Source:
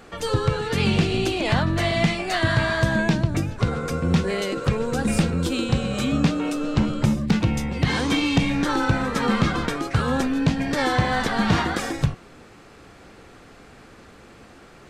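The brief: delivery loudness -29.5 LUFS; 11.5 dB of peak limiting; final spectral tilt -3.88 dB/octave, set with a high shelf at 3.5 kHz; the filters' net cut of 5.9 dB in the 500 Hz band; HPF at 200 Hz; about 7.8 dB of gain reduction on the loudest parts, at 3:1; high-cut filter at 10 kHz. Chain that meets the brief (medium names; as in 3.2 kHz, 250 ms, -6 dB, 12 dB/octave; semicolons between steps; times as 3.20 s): high-pass 200 Hz; low-pass 10 kHz; peaking EQ 500 Hz -7.5 dB; treble shelf 3.5 kHz -5.5 dB; compression 3:1, threshold -30 dBFS; trim +5.5 dB; peak limiter -21 dBFS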